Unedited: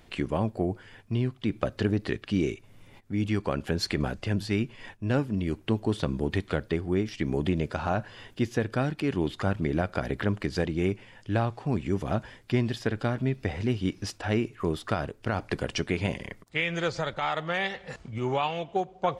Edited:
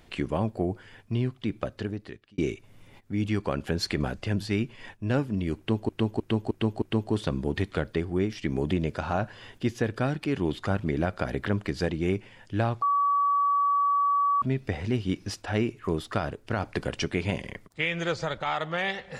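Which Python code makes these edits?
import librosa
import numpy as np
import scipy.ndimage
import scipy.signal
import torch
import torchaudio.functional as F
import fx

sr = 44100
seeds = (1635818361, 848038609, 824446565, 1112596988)

y = fx.edit(x, sr, fx.fade_out_span(start_s=1.3, length_s=1.08),
    fx.repeat(start_s=5.58, length_s=0.31, count=5),
    fx.bleep(start_s=11.58, length_s=1.6, hz=1140.0, db=-20.5), tone=tone)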